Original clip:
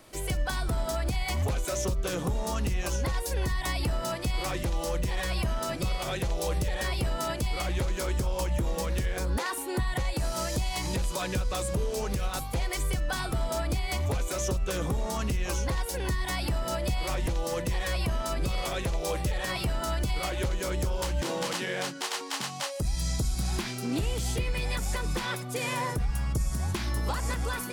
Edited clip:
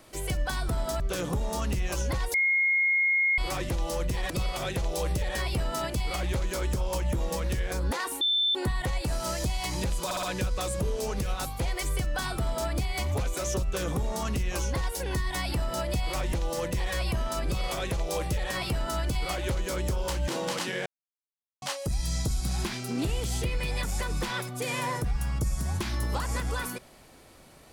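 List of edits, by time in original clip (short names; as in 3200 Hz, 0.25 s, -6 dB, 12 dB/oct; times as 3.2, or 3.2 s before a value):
1–1.94 cut
3.28–4.32 bleep 2150 Hz -21 dBFS
5.24–5.76 cut
9.67 add tone 3540 Hz -22 dBFS 0.34 s
11.17 stutter 0.06 s, 4 plays
21.8–22.56 mute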